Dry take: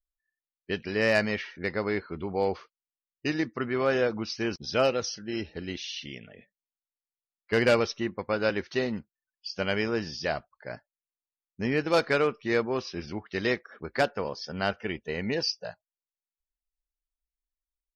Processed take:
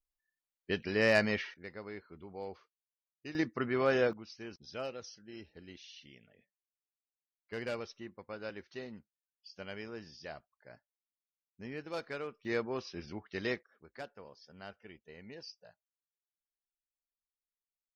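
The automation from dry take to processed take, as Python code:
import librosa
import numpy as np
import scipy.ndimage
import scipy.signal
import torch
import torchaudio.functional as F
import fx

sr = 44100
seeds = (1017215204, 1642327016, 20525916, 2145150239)

y = fx.gain(x, sr, db=fx.steps((0.0, -3.0), (1.54, -16.0), (3.35, -3.5), (4.13, -16.0), (12.45, -8.0), (13.63, -20.0)))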